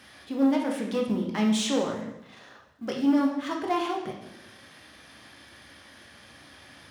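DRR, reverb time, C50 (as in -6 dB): 0.0 dB, 0.90 s, 4.5 dB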